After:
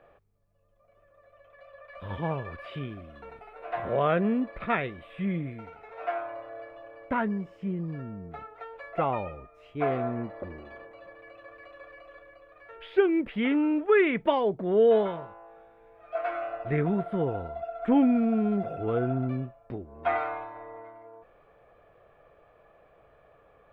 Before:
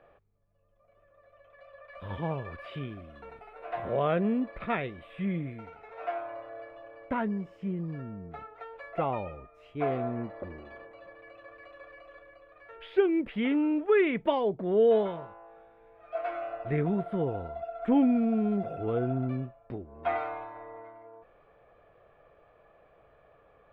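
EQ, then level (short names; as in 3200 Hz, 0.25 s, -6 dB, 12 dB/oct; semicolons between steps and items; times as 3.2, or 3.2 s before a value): dynamic EQ 1500 Hz, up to +4 dB, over -42 dBFS, Q 1.1; +1.5 dB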